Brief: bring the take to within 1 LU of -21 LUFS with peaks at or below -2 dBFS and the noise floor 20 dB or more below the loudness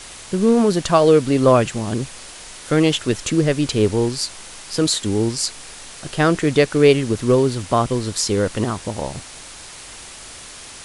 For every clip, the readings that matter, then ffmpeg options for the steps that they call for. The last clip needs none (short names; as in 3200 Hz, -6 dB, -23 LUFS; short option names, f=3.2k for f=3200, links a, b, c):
noise floor -38 dBFS; noise floor target -39 dBFS; loudness -18.5 LUFS; peak -1.5 dBFS; loudness target -21.0 LUFS
-> -af "afftdn=nr=6:nf=-38"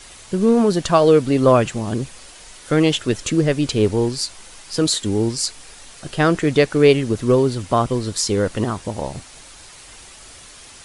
noise floor -42 dBFS; loudness -18.5 LUFS; peak -1.5 dBFS; loudness target -21.0 LUFS
-> -af "volume=-2.5dB"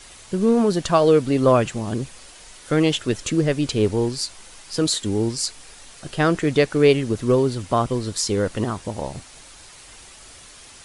loudness -21.0 LUFS; peak -4.0 dBFS; noise floor -45 dBFS